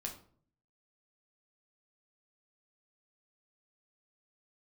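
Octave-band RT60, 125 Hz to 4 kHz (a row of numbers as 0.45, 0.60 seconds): 0.80, 0.70, 0.55, 0.45, 0.35, 0.35 seconds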